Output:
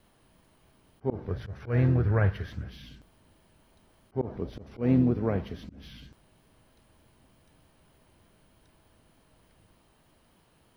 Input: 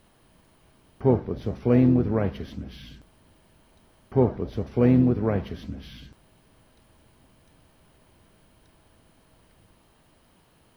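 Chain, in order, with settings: vibrato 3.3 Hz 35 cents; 1.28–2.70 s: fifteen-band graphic EQ 100 Hz +11 dB, 250 Hz -9 dB, 1.6 kHz +12 dB; slow attack 147 ms; trim -3.5 dB

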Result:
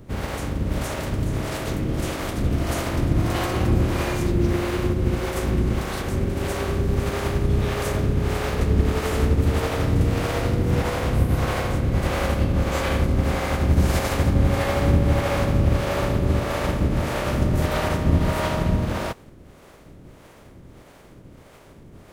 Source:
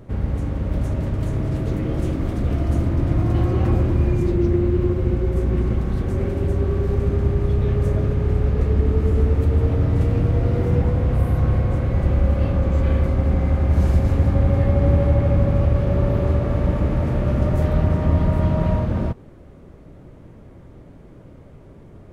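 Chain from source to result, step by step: spectral contrast reduction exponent 0.65; harmonic tremolo 1.6 Hz, depth 70%, crossover 400 Hz

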